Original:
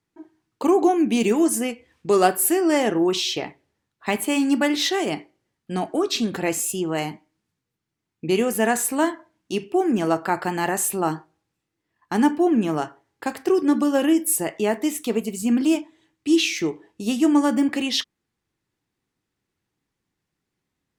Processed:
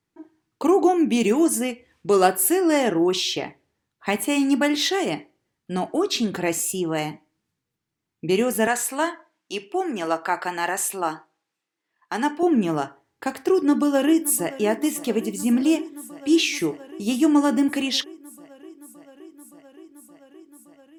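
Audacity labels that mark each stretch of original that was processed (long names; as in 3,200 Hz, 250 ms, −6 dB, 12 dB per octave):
8.670000	12.430000	meter weighting curve A
13.480000	14.540000	delay throw 570 ms, feedback 85%, level −17 dB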